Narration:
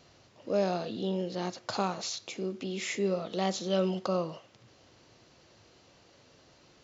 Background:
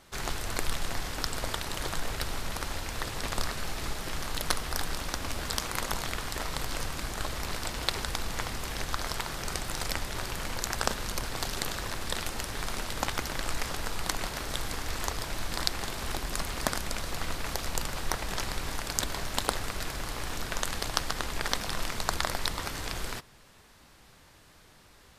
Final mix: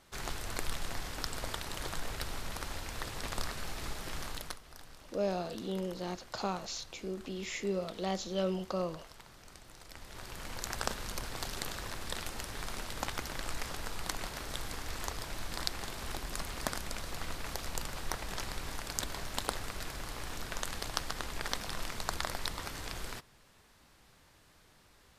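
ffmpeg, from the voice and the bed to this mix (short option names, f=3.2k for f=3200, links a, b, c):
-filter_complex "[0:a]adelay=4650,volume=-4.5dB[a];[1:a]volume=9dB,afade=t=out:st=4.25:d=0.34:silence=0.177828,afade=t=in:st=9.88:d=0.83:silence=0.188365[b];[a][b]amix=inputs=2:normalize=0"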